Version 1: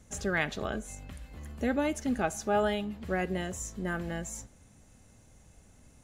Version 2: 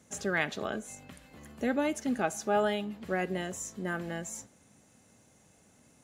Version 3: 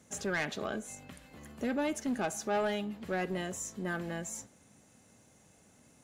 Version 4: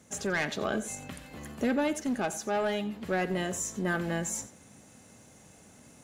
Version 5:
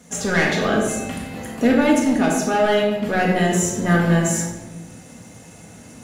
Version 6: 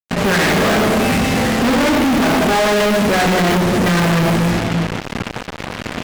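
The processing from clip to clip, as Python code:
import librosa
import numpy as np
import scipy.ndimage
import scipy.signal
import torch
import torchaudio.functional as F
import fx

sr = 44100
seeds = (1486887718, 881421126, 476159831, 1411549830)

y1 = scipy.signal.sosfilt(scipy.signal.butter(2, 160.0, 'highpass', fs=sr, output='sos'), x)
y2 = 10.0 ** (-26.0 / 20.0) * np.tanh(y1 / 10.0 ** (-26.0 / 20.0))
y3 = fx.rider(y2, sr, range_db=10, speed_s=0.5)
y3 = y3 + 10.0 ** (-16.5 / 20.0) * np.pad(y3, (int(89 * sr / 1000.0), 0))[:len(y3)]
y3 = F.gain(torch.from_numpy(y3), 4.0).numpy()
y4 = fx.room_shoebox(y3, sr, seeds[0], volume_m3=570.0, walls='mixed', distance_m=1.8)
y4 = F.gain(torch.from_numpy(y4), 7.5).numpy()
y5 = fx.cvsd(y4, sr, bps=16000)
y5 = fx.fuzz(y5, sr, gain_db=45.0, gate_db=-39.0)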